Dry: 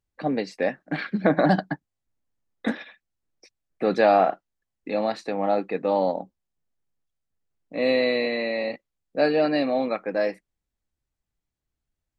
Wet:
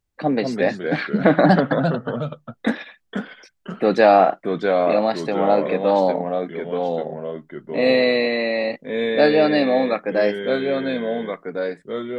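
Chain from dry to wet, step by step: ever faster or slower copies 162 ms, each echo -2 st, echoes 2, each echo -6 dB; trim +5 dB

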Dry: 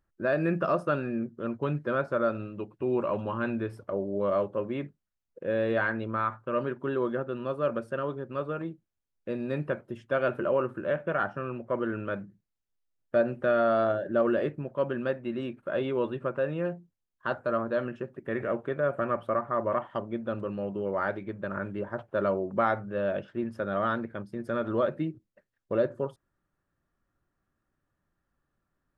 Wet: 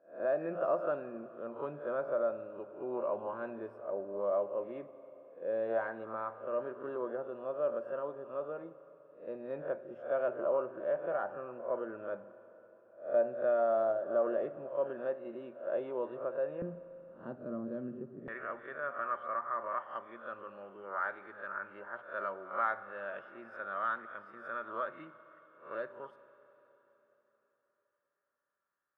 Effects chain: reverse spectral sustain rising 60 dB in 0.38 s; band-pass filter 670 Hz, Q 1.7, from 16.62 s 230 Hz, from 18.28 s 1.4 kHz; Schroeder reverb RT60 4 s, combs from 32 ms, DRR 14 dB; trim -3.5 dB

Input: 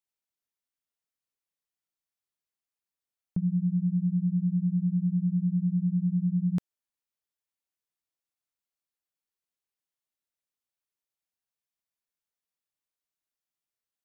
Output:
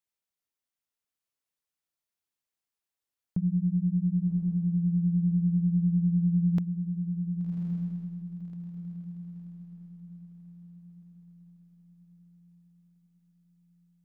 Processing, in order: tracing distortion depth 0.39 ms; on a send: echo that smears into a reverb 1122 ms, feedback 42%, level -6 dB

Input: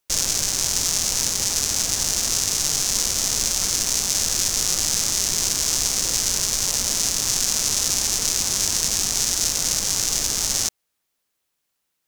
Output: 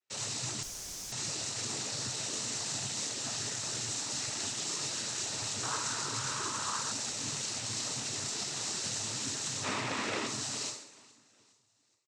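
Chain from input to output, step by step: 9.63–10.26 s: sorted samples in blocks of 64 samples; low-pass 3.2 kHz 6 dB/octave; feedback comb 130 Hz, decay 0.67 s, harmonics all, mix 90%; feedback delay 418 ms, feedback 47%, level -23.5 dB; noise-vocoded speech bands 12; 0.63–1.12 s: room tone; 5.63–6.92 s: high-order bell 1.2 kHz +11.5 dB 1 oct; trim +5 dB

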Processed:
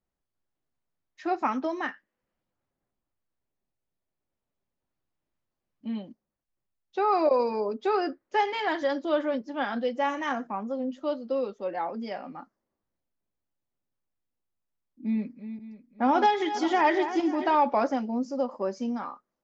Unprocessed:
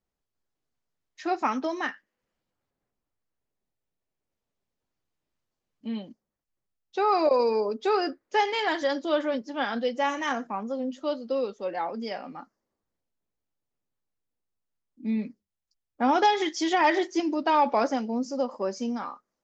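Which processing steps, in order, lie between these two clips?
15.05–17.55 s: backward echo that repeats 271 ms, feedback 51%, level -10.5 dB; treble shelf 3.6 kHz -11 dB; band-stop 450 Hz, Q 12

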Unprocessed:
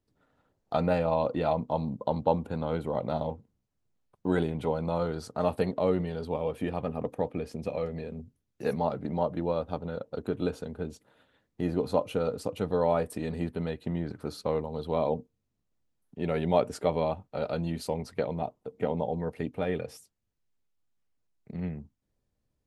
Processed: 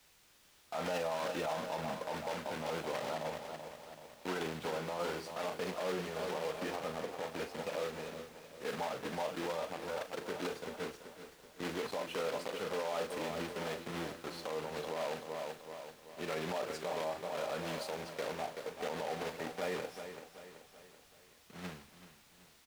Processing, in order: block-companded coder 3-bit; high-pass 820 Hz 6 dB/octave; added noise white -53 dBFS; low-pass 2.5 kHz 6 dB/octave; doubling 38 ms -11 dB; feedback delay 382 ms, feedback 58%, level -10.5 dB; peak limiter -29 dBFS, peak gain reduction 14 dB; three bands expanded up and down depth 40%; trim +1 dB

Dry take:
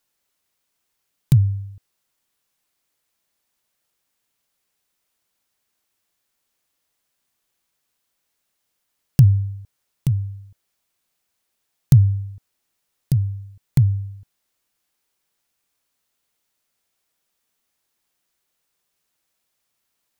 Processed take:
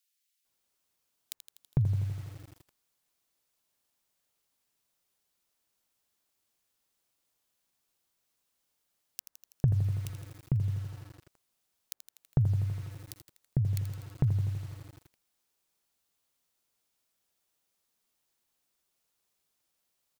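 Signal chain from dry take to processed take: compression 3:1, threshold -22 dBFS, peak gain reduction 11 dB; bands offset in time highs, lows 450 ms, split 1.9 kHz; bit-crushed delay 82 ms, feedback 80%, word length 7-bit, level -10.5 dB; trim -4 dB

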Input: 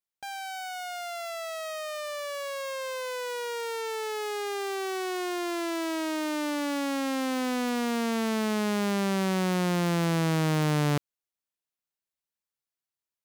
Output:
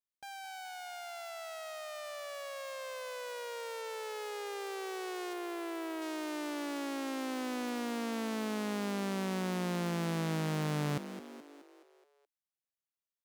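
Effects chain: 5.33–6.02 s: peaking EQ 5.5 kHz -7 dB 1.5 oct; frequency-shifting echo 212 ms, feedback 54%, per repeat +46 Hz, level -11.5 dB; trim -8.5 dB

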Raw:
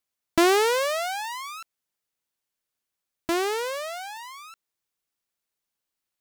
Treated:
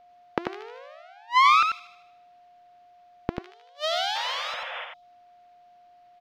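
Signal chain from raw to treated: time-frequency box 3.42–5.02 s, 310–2900 Hz -14 dB; inverted gate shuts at -27 dBFS, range -42 dB; feedback echo behind a high-pass 77 ms, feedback 55%, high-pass 2.2 kHz, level -15.5 dB; sine folder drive 14 dB, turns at -11.5 dBFS; painted sound noise, 4.15–4.85 s, 480–3600 Hz -37 dBFS; distance through air 260 m; delay 91 ms -5 dB; whistle 710 Hz -56 dBFS; trim +3.5 dB

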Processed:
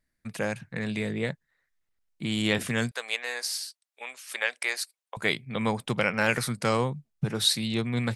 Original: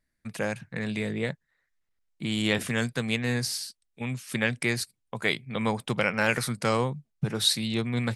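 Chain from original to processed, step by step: 2.91–5.17 s: high-pass 550 Hz 24 dB/octave

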